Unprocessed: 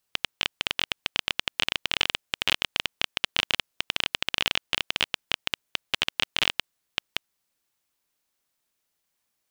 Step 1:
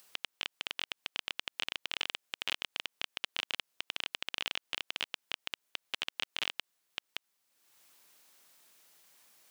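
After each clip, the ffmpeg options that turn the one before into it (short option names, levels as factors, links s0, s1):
-af "alimiter=limit=0.178:level=0:latency=1:release=111,highpass=f=300:p=1,acompressor=mode=upward:threshold=0.00355:ratio=2.5"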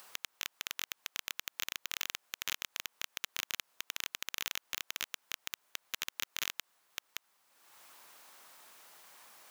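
-af "equalizer=f=1000:w=0.71:g=9.5,aeval=exprs='0.0596*(abs(mod(val(0)/0.0596+3,4)-2)-1)':c=same,volume=1.68"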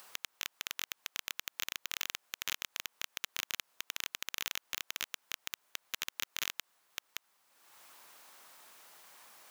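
-af anull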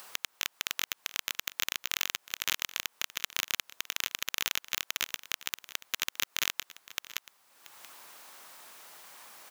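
-af "aecho=1:1:681:0.133,volume=2"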